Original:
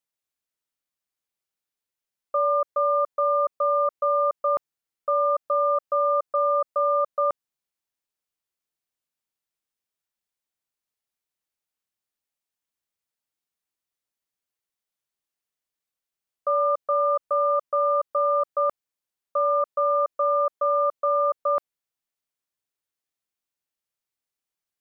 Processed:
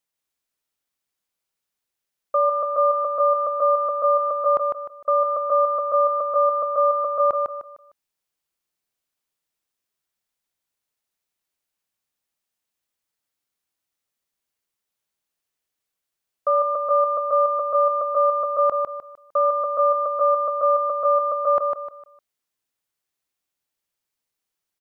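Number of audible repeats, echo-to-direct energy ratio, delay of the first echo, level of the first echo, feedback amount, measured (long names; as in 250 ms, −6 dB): 4, −4.0 dB, 152 ms, −4.5 dB, 33%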